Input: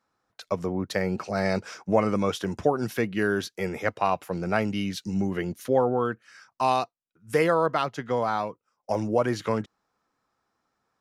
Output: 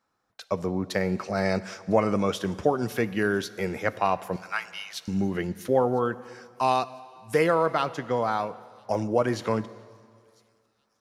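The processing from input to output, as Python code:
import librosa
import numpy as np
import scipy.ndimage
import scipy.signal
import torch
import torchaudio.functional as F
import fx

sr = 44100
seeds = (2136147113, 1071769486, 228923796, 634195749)

p1 = fx.steep_highpass(x, sr, hz=950.0, slope=36, at=(4.36, 5.08))
p2 = p1 + fx.echo_wet_highpass(p1, sr, ms=1003, feedback_pct=52, hz=4900.0, wet_db=-22.0, dry=0)
y = fx.rev_plate(p2, sr, seeds[0], rt60_s=2.1, hf_ratio=0.95, predelay_ms=0, drr_db=15.5)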